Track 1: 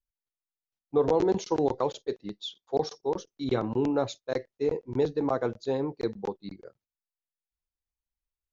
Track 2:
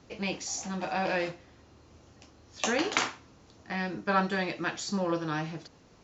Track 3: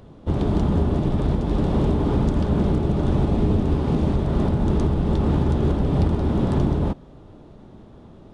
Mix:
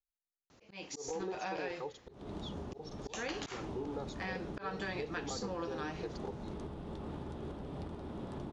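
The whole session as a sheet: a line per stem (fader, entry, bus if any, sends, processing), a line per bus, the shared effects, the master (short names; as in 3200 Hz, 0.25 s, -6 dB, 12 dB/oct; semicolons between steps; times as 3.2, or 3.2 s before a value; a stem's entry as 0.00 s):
-14.5 dB, 0.00 s, no send, comb 2.4 ms, depth 92%
-3.5 dB, 0.50 s, no send, low shelf 320 Hz -6 dB
-17.0 dB, 1.80 s, no send, low shelf 220 Hz -10.5 dB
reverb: off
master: auto swell 0.239 s; compressor 10:1, threshold -35 dBFS, peak gain reduction 9 dB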